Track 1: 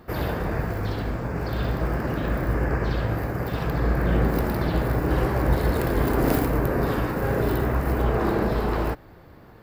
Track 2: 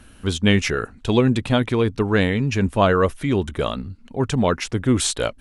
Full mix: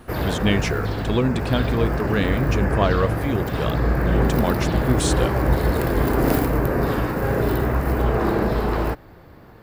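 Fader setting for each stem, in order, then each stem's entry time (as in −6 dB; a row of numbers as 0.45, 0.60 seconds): +2.5, −4.0 decibels; 0.00, 0.00 seconds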